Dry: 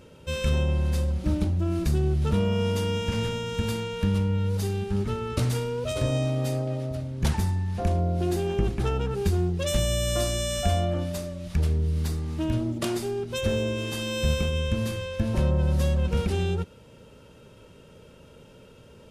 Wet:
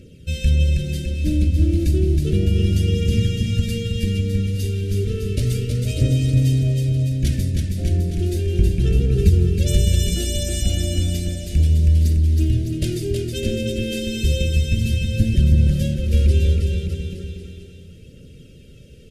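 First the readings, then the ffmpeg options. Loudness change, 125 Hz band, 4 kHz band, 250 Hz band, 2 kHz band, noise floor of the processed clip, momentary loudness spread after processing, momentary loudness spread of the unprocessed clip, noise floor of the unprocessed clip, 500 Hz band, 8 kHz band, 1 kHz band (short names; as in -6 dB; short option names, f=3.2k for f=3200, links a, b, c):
+7.0 dB, +8.5 dB, +4.0 dB, +5.0 dB, +1.5 dB, -43 dBFS, 7 LU, 5 LU, -51 dBFS, +0.5 dB, +4.5 dB, under -15 dB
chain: -filter_complex "[0:a]asuperstop=centerf=970:order=4:qfactor=0.55,lowshelf=f=170:g=4.5,aphaser=in_gain=1:out_gain=1:delay=3.9:decay=0.42:speed=0.33:type=triangular,asplit=2[a][b];[b]aecho=0:1:320|608|867.2|1100|1310:0.631|0.398|0.251|0.158|0.1[c];[a][c]amix=inputs=2:normalize=0,volume=1.5dB"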